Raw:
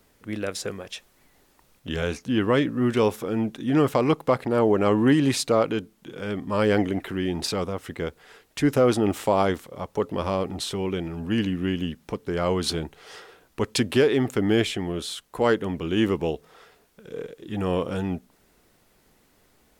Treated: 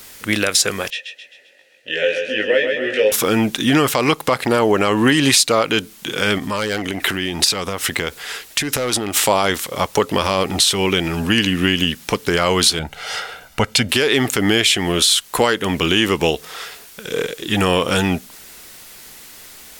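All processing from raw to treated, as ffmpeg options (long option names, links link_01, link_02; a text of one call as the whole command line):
ffmpeg -i in.wav -filter_complex "[0:a]asettb=1/sr,asplit=3[link_01][link_02][link_03];[link_01]atrim=end=0.904[link_04];[link_02]atrim=start=0.9:end=3.12,asetpts=PTS-STARTPTS,afade=type=in:duration=0.004:curve=qsin,afade=type=out:start_time=2.216:duration=0.004:curve=qsin,asplit=3[link_05][link_06][link_07];[link_05]bandpass=frequency=530:width_type=q:width=8,volume=0dB[link_08];[link_06]bandpass=frequency=1840:width_type=q:width=8,volume=-6dB[link_09];[link_07]bandpass=frequency=2480:width_type=q:width=8,volume=-9dB[link_10];[link_08][link_09][link_10]amix=inputs=3:normalize=0,asplit=2[link_11][link_12];[link_12]adelay=19,volume=-2dB[link_13];[link_11][link_13]amix=inputs=2:normalize=0,atrim=end_sample=97902,aecho=1:1:131|262|393|524|655|786:0.473|0.222|0.105|0.0491|0.0231|0.0109,atrim=end_sample=97902[link_14];[link_03]atrim=start=3.116[link_15];[link_04][link_14]acrossfade=duration=0.004:curve1=hsin:curve2=qsin[link_16];[link_16][link_15]acrossfade=duration=0.004:curve1=qsin:curve2=hsin,asettb=1/sr,asplit=3[link_17][link_18][link_19];[link_17]atrim=end=6.384[link_20];[link_18]atrim=start=6.38:end=9.19,asetpts=PTS-STARTPTS,afade=type=in:duration=0.004:curve=qsin,afade=type=out:start_time=2.806:duration=0.004:curve=qsin,volume=13.5dB,asoftclip=hard,volume=-13.5dB,acompressor=threshold=-31dB:ratio=10:attack=3.2:release=140:knee=1:detection=peak[link_21];[link_19]atrim=start=9.186[link_22];[link_20][link_21]acrossfade=duration=0.004:curve1=hsin:curve2=qsin[link_23];[link_23][link_22]acrossfade=duration=0.004:curve1=qsin:curve2=hsin,asettb=1/sr,asplit=3[link_24][link_25][link_26];[link_24]atrim=end=12.794[link_27];[link_25]atrim=start=12.79:end=13.89,asetpts=PTS-STARTPTS,afade=type=in:duration=0.004:curve=qsin,afade=type=out:start_time=1.096:duration=0.004:curve=qsin,highshelf=frequency=3000:gain=-11.5,aecho=1:1:1.4:0.61,atrim=end_sample=48510[link_28];[link_26]atrim=start=13.886[link_29];[link_27][link_28]acrossfade=duration=0.004:curve1=hsin:curve2=qsin[link_30];[link_30][link_29]acrossfade=duration=0.004:curve1=qsin:curve2=hsin,tiltshelf=frequency=1300:gain=-8.5,acompressor=threshold=-31dB:ratio=3,alimiter=level_in=20dB:limit=-1dB:release=50:level=0:latency=1,volume=-1.5dB" out.wav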